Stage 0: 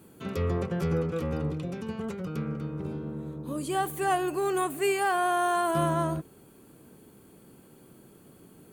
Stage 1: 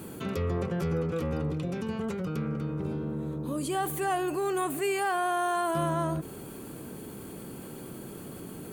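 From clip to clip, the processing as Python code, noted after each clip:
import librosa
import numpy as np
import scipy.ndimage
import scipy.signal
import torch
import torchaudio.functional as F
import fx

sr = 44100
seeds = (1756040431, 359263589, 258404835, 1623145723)

y = fx.env_flatten(x, sr, amount_pct=50)
y = y * 10.0 ** (-3.5 / 20.0)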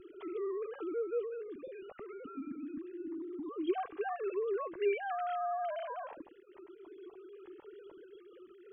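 y = fx.sine_speech(x, sr)
y = fx.low_shelf(y, sr, hz=250.0, db=11.0)
y = fx.comb_cascade(y, sr, direction='rising', hz=0.3)
y = y * 10.0 ** (-6.0 / 20.0)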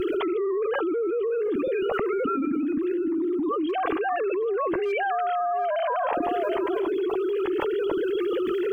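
y = np.clip(x, -10.0 ** (-26.5 / 20.0), 10.0 ** (-26.5 / 20.0))
y = y + 10.0 ** (-21.5 / 20.0) * np.pad(y, (int(732 * sr / 1000.0), 0))[:len(y)]
y = fx.env_flatten(y, sr, amount_pct=100)
y = y * 10.0 ** (3.0 / 20.0)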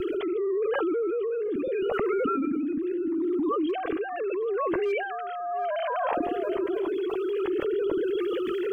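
y = fx.rotary(x, sr, hz=0.8)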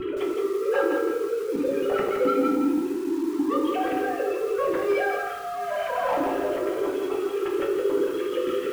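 y = 10.0 ** (-23.0 / 20.0) * np.tanh(x / 10.0 ** (-23.0 / 20.0))
y = fx.rev_fdn(y, sr, rt60_s=0.62, lf_ratio=1.05, hf_ratio=0.85, size_ms=11.0, drr_db=-1.5)
y = fx.echo_crushed(y, sr, ms=167, feedback_pct=35, bits=7, wet_db=-4.5)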